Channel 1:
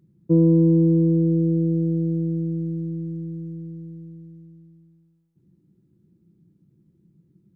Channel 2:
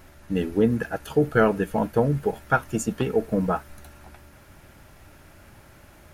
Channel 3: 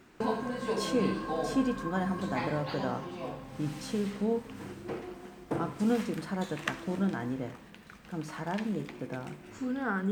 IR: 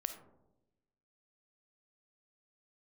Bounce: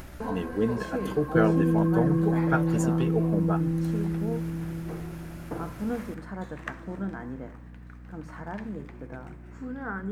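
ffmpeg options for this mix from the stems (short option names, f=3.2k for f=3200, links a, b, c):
-filter_complex "[0:a]acompressor=threshold=-22dB:ratio=6,adelay=1050,volume=0.5dB[a];[1:a]acompressor=mode=upward:threshold=-30dB:ratio=2.5,volume=-6dB[b];[2:a]highshelf=f=2.3k:t=q:w=1.5:g=-7,volume=-3.5dB[c];[a][b][c]amix=inputs=3:normalize=0,aeval=exprs='val(0)+0.00631*(sin(2*PI*60*n/s)+sin(2*PI*2*60*n/s)/2+sin(2*PI*3*60*n/s)/3+sin(2*PI*4*60*n/s)/4+sin(2*PI*5*60*n/s)/5)':c=same"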